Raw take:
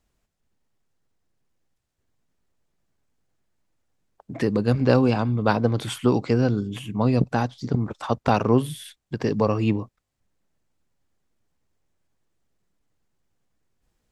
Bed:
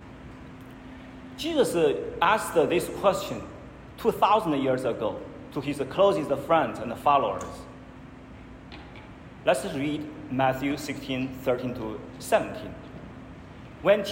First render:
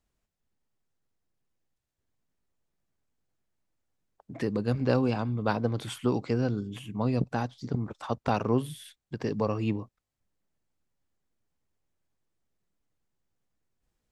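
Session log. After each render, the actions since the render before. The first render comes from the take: gain -7 dB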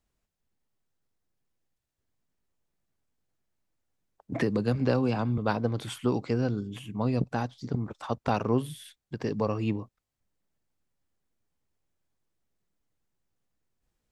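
4.32–5.38 three-band squash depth 70%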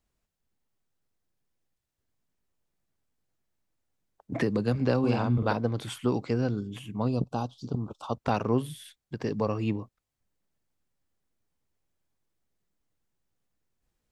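4.99–5.53 doubler 49 ms -3 dB; 7.08–8.16 Chebyshev band-stop 1200–3000 Hz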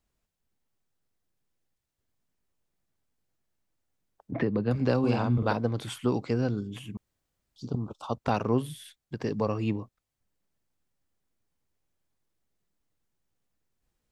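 4.31–4.71 air absorption 290 m; 6.97–7.56 room tone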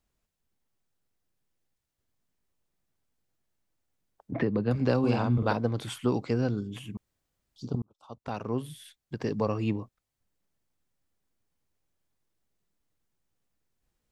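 7.82–9.14 fade in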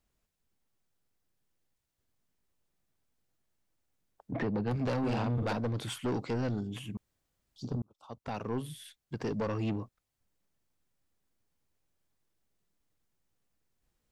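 soft clip -27 dBFS, distortion -8 dB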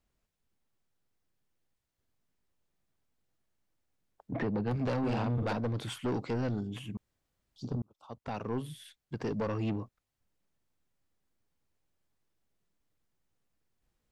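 high shelf 5400 Hz -5 dB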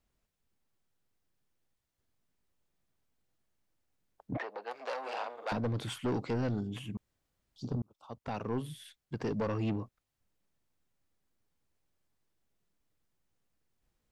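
4.37–5.52 HPF 550 Hz 24 dB/oct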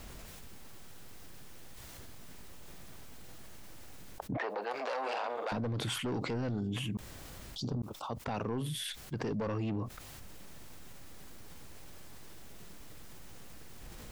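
limiter -31 dBFS, peak gain reduction 7 dB; fast leveller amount 70%

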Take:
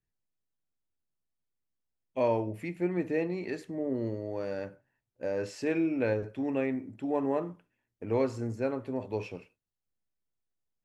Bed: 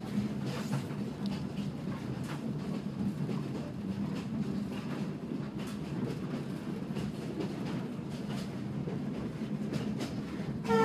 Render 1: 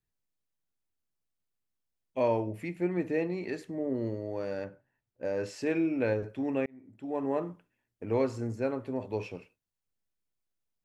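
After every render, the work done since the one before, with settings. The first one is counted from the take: 4.64–5.25 high shelf 4400 Hz -9 dB; 6.66–7.4 fade in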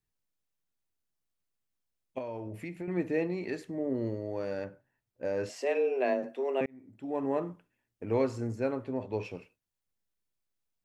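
2.18–2.88 compressor 10:1, threshold -34 dBFS; 5.49–6.61 frequency shift +130 Hz; 8.84–9.25 air absorption 54 m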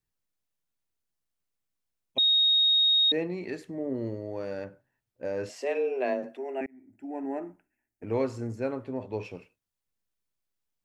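2.18–3.12 bleep 3740 Hz -19 dBFS; 6.37–8.03 fixed phaser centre 740 Hz, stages 8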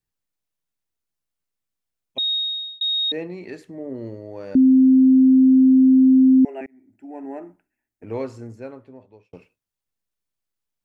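2.33–2.81 fade out; 4.55–6.45 bleep 261 Hz -9.5 dBFS; 8.17–9.33 fade out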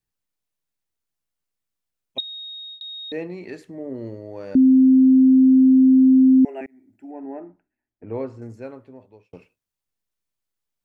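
2.2–3.12 compressor, threshold -35 dBFS; 7.11–8.42 LPF 1200 Hz 6 dB/oct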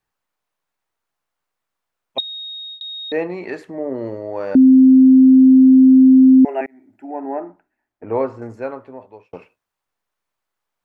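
bell 1000 Hz +14.5 dB 2.7 oct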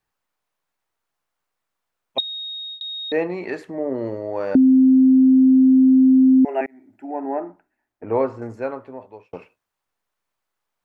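compressor, threshold -11 dBFS, peak gain reduction 4.5 dB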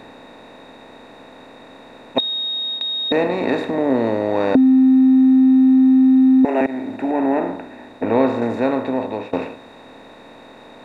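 per-bin compression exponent 0.4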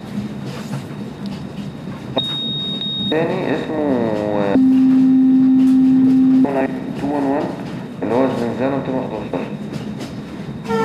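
add bed +8.5 dB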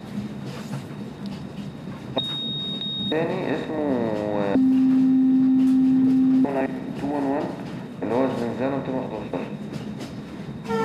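gain -6 dB

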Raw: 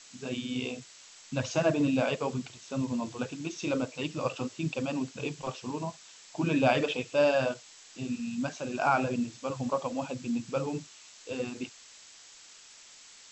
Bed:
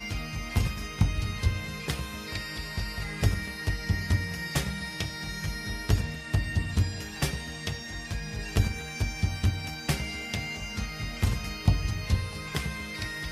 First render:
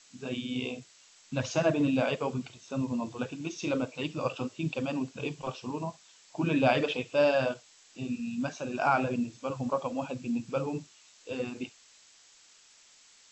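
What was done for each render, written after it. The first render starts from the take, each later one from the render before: noise print and reduce 6 dB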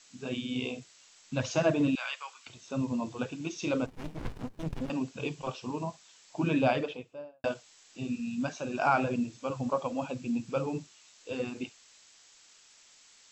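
1.95–2.47 HPF 1100 Hz 24 dB/oct; 3.86–4.9 running maximum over 65 samples; 6.42–7.44 studio fade out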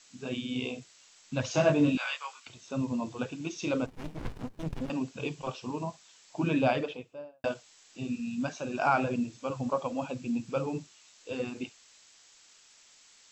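1.52–2.4 doubler 20 ms -2.5 dB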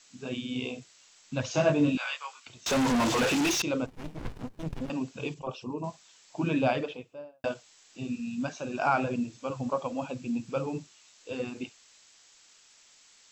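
2.66–3.62 overdrive pedal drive 40 dB, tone 4600 Hz, clips at -18.5 dBFS; 5.34–5.84 formant sharpening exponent 1.5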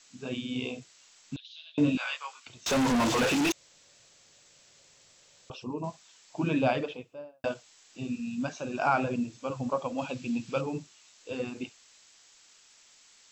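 1.36–1.78 Butterworth band-pass 3600 Hz, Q 4; 3.52–5.5 room tone; 9.98–10.61 bell 3300 Hz +6.5 dB 1.9 oct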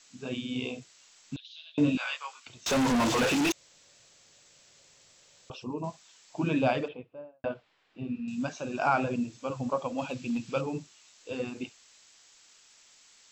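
6.88–8.28 air absorption 420 m; 10–10.52 hard clip -25 dBFS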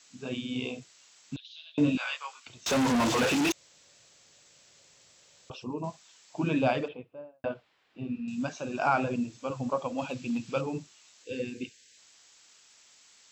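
HPF 43 Hz; 11.24–11.97 spectral gain 540–1500 Hz -18 dB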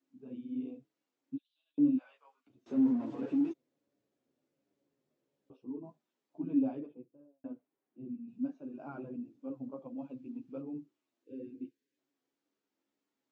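band-pass 290 Hz, Q 3.2; chorus voices 6, 0.26 Hz, delay 11 ms, depth 3.9 ms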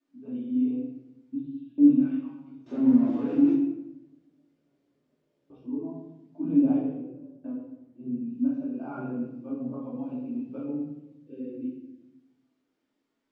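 air absorption 62 m; shoebox room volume 300 m³, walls mixed, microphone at 2.6 m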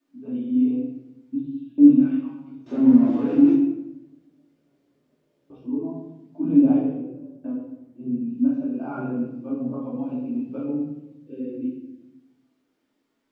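gain +5.5 dB

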